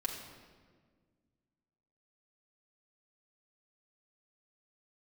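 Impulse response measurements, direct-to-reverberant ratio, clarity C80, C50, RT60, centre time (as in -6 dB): -2.0 dB, 6.0 dB, 5.0 dB, 1.6 s, 43 ms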